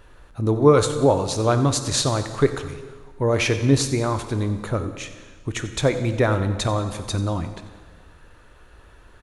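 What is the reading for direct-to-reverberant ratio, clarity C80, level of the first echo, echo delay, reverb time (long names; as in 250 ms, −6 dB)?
8.5 dB, 10.5 dB, −16.0 dB, 91 ms, 1.6 s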